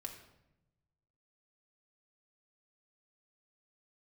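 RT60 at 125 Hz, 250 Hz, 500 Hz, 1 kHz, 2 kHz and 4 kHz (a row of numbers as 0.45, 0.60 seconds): 1.7, 1.3, 1.0, 0.80, 0.75, 0.60 seconds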